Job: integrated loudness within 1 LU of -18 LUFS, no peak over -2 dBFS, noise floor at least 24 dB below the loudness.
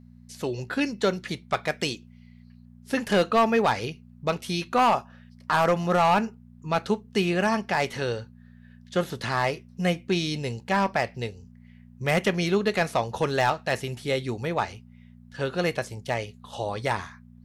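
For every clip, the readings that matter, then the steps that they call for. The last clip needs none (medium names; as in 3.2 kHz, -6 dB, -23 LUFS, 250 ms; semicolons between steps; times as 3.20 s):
clipped samples 0.5%; clipping level -14.5 dBFS; hum 60 Hz; highest harmonic 240 Hz; hum level -50 dBFS; loudness -26.5 LUFS; peak level -14.5 dBFS; loudness target -18.0 LUFS
-> clip repair -14.5 dBFS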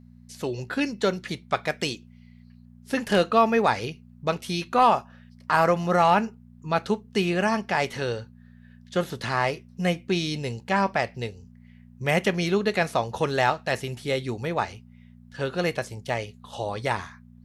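clipped samples 0.0%; hum 60 Hz; highest harmonic 240 Hz; hum level -50 dBFS
-> de-hum 60 Hz, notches 4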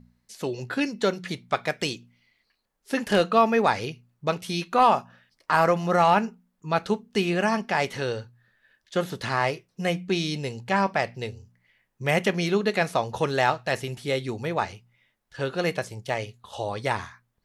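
hum not found; loudness -26.0 LUFS; peak level -6.0 dBFS; loudness target -18.0 LUFS
-> trim +8 dB; peak limiter -2 dBFS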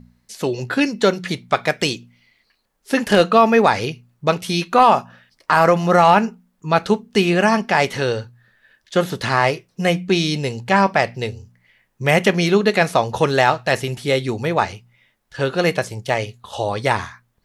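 loudness -18.5 LUFS; peak level -2.0 dBFS; noise floor -67 dBFS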